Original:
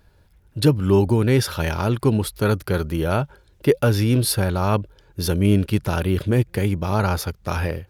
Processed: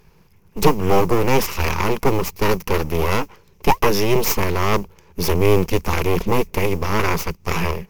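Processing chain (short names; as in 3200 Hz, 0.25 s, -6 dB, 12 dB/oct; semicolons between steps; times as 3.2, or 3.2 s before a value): modulation noise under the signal 31 dB; full-wave rectifier; ripple EQ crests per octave 0.79, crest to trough 9 dB; gain +5 dB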